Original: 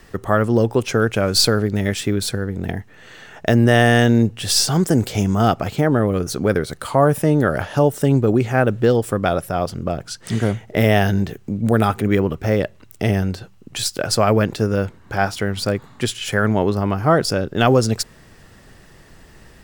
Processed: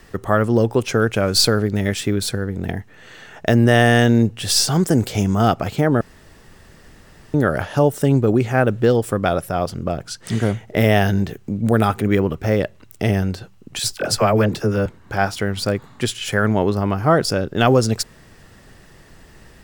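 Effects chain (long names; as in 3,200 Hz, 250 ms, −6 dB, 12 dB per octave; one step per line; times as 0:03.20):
0:06.01–0:07.34: fill with room tone
0:13.79–0:14.86: all-pass dispersion lows, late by 47 ms, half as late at 640 Hz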